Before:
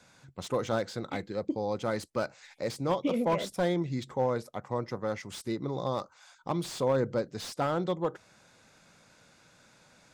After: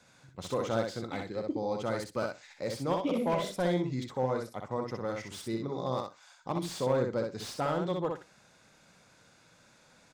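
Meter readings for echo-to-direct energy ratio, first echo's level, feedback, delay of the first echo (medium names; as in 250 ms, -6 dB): -4.0 dB, -4.0 dB, 15%, 62 ms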